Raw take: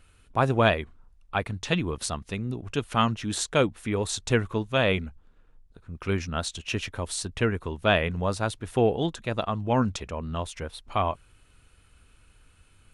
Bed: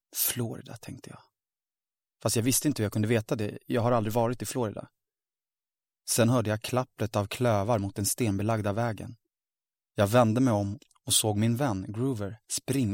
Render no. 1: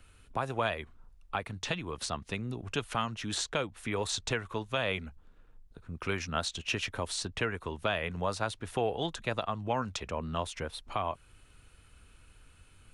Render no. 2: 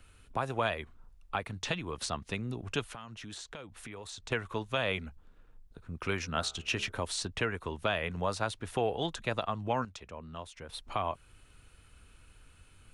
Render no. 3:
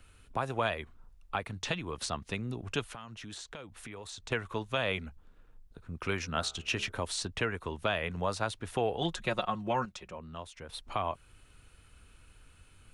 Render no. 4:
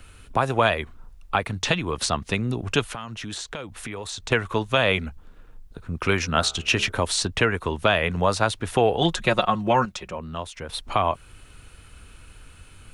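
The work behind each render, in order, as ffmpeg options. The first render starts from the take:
ffmpeg -i in.wav -filter_complex "[0:a]acrossover=split=110|540|7000[link_01][link_02][link_03][link_04];[link_01]acompressor=threshold=-45dB:ratio=4[link_05];[link_02]acompressor=threshold=-37dB:ratio=4[link_06];[link_03]acompressor=threshold=-25dB:ratio=4[link_07];[link_04]acompressor=threshold=-50dB:ratio=4[link_08];[link_05][link_06][link_07][link_08]amix=inputs=4:normalize=0,alimiter=limit=-17.5dB:level=0:latency=1:release=379" out.wav
ffmpeg -i in.wav -filter_complex "[0:a]asettb=1/sr,asplit=3[link_01][link_02][link_03];[link_01]atrim=end=2.824[link_04];[link_02]atrim=start=2.82:end=4.32,asetpts=PTS-STARTPTS,afade=type=in:duration=0.004:curve=qsin,afade=type=out:start_time=1.496:duration=0.004:curve=qsin,acompressor=threshold=-43dB:ratio=4:attack=3.2:release=140:knee=1:detection=peak[link_05];[link_03]atrim=start=4.316[link_06];[link_04][link_05]acrossfade=duration=0.004:curve1=hsin:curve2=qsin[link_07];[link_07][link_06]acrossfade=duration=0.004:curve1=qsin:curve2=hsin,asplit=3[link_08][link_09][link_10];[link_08]afade=type=out:start_time=6.22:duration=0.02[link_11];[link_09]bandreject=frequency=70.63:width_type=h:width=4,bandreject=frequency=141.26:width_type=h:width=4,bandreject=frequency=211.89:width_type=h:width=4,bandreject=frequency=282.52:width_type=h:width=4,bandreject=frequency=353.15:width_type=h:width=4,bandreject=frequency=423.78:width_type=h:width=4,bandreject=frequency=494.41:width_type=h:width=4,bandreject=frequency=565.04:width_type=h:width=4,bandreject=frequency=635.67:width_type=h:width=4,bandreject=frequency=706.3:width_type=h:width=4,bandreject=frequency=776.93:width_type=h:width=4,bandreject=frequency=847.56:width_type=h:width=4,bandreject=frequency=918.19:width_type=h:width=4,bandreject=frequency=988.82:width_type=h:width=4,bandreject=frequency=1059.45:width_type=h:width=4,bandreject=frequency=1130.08:width_type=h:width=4,bandreject=frequency=1200.71:width_type=h:width=4,bandreject=frequency=1271.34:width_type=h:width=4,bandreject=frequency=1341.97:width_type=h:width=4,bandreject=frequency=1412.6:width_type=h:width=4,bandreject=frequency=1483.23:width_type=h:width=4,bandreject=frequency=1553.86:width_type=h:width=4,afade=type=in:start_time=6.22:duration=0.02,afade=type=out:start_time=6.91:duration=0.02[link_12];[link_10]afade=type=in:start_time=6.91:duration=0.02[link_13];[link_11][link_12][link_13]amix=inputs=3:normalize=0,asplit=3[link_14][link_15][link_16];[link_14]atrim=end=9.852[link_17];[link_15]atrim=start=9.848:end=10.692,asetpts=PTS-STARTPTS,volume=-9.5dB[link_18];[link_16]atrim=start=10.688[link_19];[link_17][link_18]acrossfade=duration=0.004:curve1=hsin:curve2=hsin[link_20];[link_20][link_19]acrossfade=duration=0.004:curve1=hsin:curve2=hsin" out.wav
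ffmpeg -i in.wav -filter_complex "[0:a]asettb=1/sr,asplit=3[link_01][link_02][link_03];[link_01]atrim=end=9.014[link_04];[link_02]atrim=start=9.01:end=10.18,asetpts=PTS-STARTPTS,afade=type=in:duration=0.004:curve=qsin,afade=type=out:start_time=1.166:duration=0.004:curve=qsin,aecho=1:1:5.5:0.65,atrim=end_sample=51597[link_05];[link_03]atrim=start=10.176[link_06];[link_04][link_05]acrossfade=duration=0.004:curve1=hsin:curve2=qsin[link_07];[link_07][link_06]acrossfade=duration=0.004:curve1=qsin:curve2=hsin" out.wav
ffmpeg -i in.wav -af "volume=11dB" out.wav

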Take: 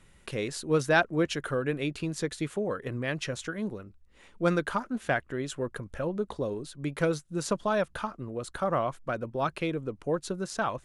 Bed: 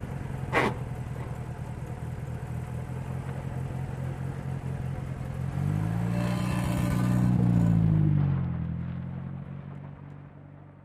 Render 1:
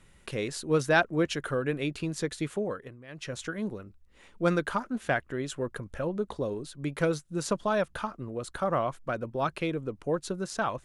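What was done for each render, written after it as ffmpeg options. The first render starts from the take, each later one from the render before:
ffmpeg -i in.wav -filter_complex "[0:a]asplit=3[link_01][link_02][link_03];[link_01]atrim=end=2.96,asetpts=PTS-STARTPTS,afade=type=out:start_time=2.62:duration=0.34:silence=0.141254[link_04];[link_02]atrim=start=2.96:end=3.08,asetpts=PTS-STARTPTS,volume=-17dB[link_05];[link_03]atrim=start=3.08,asetpts=PTS-STARTPTS,afade=type=in:duration=0.34:silence=0.141254[link_06];[link_04][link_05][link_06]concat=n=3:v=0:a=1" out.wav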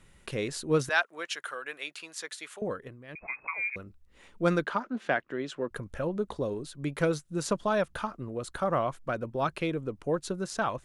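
ffmpeg -i in.wav -filter_complex "[0:a]asettb=1/sr,asplit=3[link_01][link_02][link_03];[link_01]atrim=end=0.894[link_04];[link_02]atrim=start=0.89:end=2.62,asetpts=PTS-STARTPTS,afade=type=in:duration=0.004:curve=qsin,afade=type=out:start_time=1.726:duration=0.004:curve=qsin,highpass=1000[link_05];[link_03]atrim=start=2.616[link_06];[link_04][link_05]acrossfade=duration=0.004:curve1=hsin:curve2=qsin[link_07];[link_07][link_06]acrossfade=duration=0.004:curve1=qsin:curve2=hsin,asettb=1/sr,asplit=3[link_08][link_09][link_10];[link_08]atrim=end=3.154[link_11];[link_09]atrim=start=3.15:end=3.76,asetpts=PTS-STARTPTS,afade=type=in:duration=0.004:curve=qsin,afade=type=out:start_time=0.606:duration=0.004:curve=qsin,lowpass=frequency=2200:width_type=q:width=0.5098,lowpass=frequency=2200:width_type=q:width=0.6013,lowpass=frequency=2200:width_type=q:width=0.9,lowpass=frequency=2200:width_type=q:width=2.563,afreqshift=-2600[link_12];[link_10]atrim=start=3.756[link_13];[link_11][link_12]acrossfade=duration=0.004:curve1=hsin:curve2=qsin[link_14];[link_14][link_13]acrossfade=duration=0.004:curve1=qsin:curve2=hsin,asettb=1/sr,asplit=3[link_15][link_16][link_17];[link_15]atrim=end=4.644[link_18];[link_16]atrim=start=4.64:end=5.71,asetpts=PTS-STARTPTS,afade=type=in:duration=0.004:curve=qsin,afade=type=out:start_time=1.066:duration=0.004:curve=qsin,acrossover=split=160 5700:gain=0.0631 1 0.126[link_19][link_20][link_21];[link_19][link_20][link_21]amix=inputs=3:normalize=0[link_22];[link_17]atrim=start=5.706[link_23];[link_18][link_22]acrossfade=duration=0.004:curve1=hsin:curve2=qsin[link_24];[link_24][link_23]acrossfade=duration=0.004:curve1=qsin:curve2=hsin" out.wav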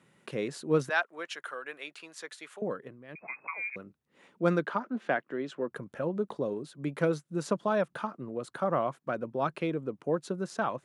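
ffmpeg -i in.wav -af "highpass=frequency=140:width=0.5412,highpass=frequency=140:width=1.3066,highshelf=frequency=2500:gain=-8.5" out.wav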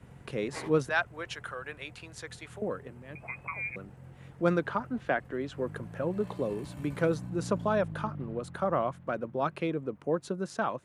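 ffmpeg -i in.wav -i bed.wav -filter_complex "[1:a]volume=-16.5dB[link_01];[0:a][link_01]amix=inputs=2:normalize=0" out.wav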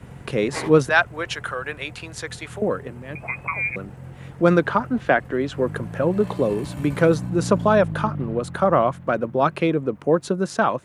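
ffmpeg -i in.wav -af "volume=11dB,alimiter=limit=-3dB:level=0:latency=1" out.wav

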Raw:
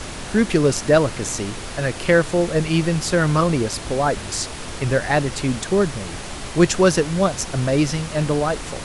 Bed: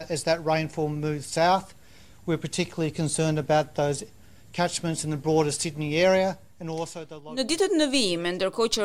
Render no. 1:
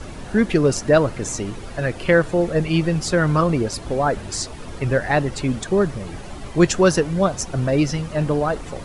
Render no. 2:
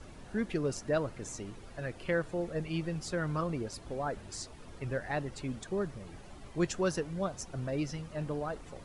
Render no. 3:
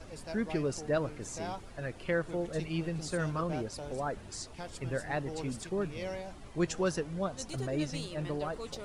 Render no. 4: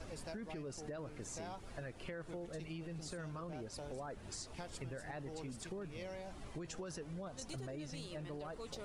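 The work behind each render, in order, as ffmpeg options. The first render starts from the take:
ffmpeg -i in.wav -af "afftdn=noise_reduction=11:noise_floor=-32" out.wav
ffmpeg -i in.wav -af "volume=-15.5dB" out.wav
ffmpeg -i in.wav -i bed.wav -filter_complex "[1:a]volume=-19dB[link_01];[0:a][link_01]amix=inputs=2:normalize=0" out.wav
ffmpeg -i in.wav -af "alimiter=level_in=4.5dB:limit=-24dB:level=0:latency=1:release=13,volume=-4.5dB,acompressor=threshold=-43dB:ratio=6" out.wav

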